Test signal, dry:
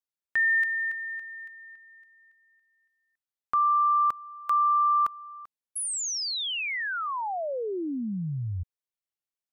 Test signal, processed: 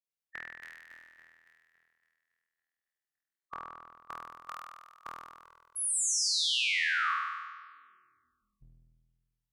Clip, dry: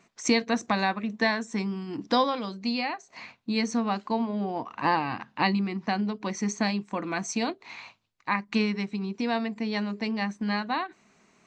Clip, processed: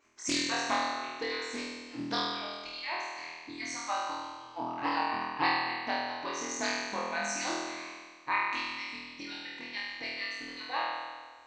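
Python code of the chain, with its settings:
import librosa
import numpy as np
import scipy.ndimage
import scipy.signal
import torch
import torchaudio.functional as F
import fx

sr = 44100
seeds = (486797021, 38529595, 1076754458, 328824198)

y = fx.hpss_only(x, sr, part='percussive')
y = fx.room_flutter(y, sr, wall_m=4.2, rt60_s=1.5)
y = fx.doppler_dist(y, sr, depth_ms=0.17)
y = y * 10.0 ** (-5.5 / 20.0)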